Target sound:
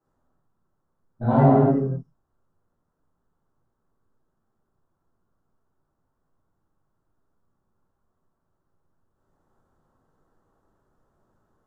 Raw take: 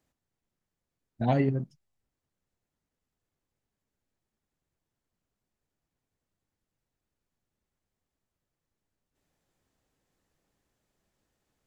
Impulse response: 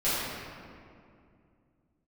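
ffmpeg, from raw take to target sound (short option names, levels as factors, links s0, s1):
-filter_complex "[0:a]highshelf=f=1700:t=q:w=3:g=-10.5[s0];[1:a]atrim=start_sample=2205,afade=t=out:st=0.31:d=0.01,atrim=end_sample=14112,asetrate=29988,aresample=44100[s1];[s0][s1]afir=irnorm=-1:irlink=0,volume=0.501"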